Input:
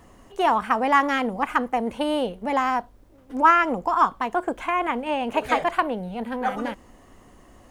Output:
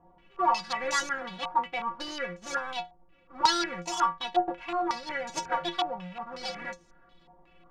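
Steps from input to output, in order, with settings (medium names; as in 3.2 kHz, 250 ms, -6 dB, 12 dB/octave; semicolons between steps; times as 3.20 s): square wave that keeps the level; inharmonic resonator 170 Hz, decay 0.24 s, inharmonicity 0.008; step-sequenced low-pass 5.5 Hz 870–6400 Hz; trim -4 dB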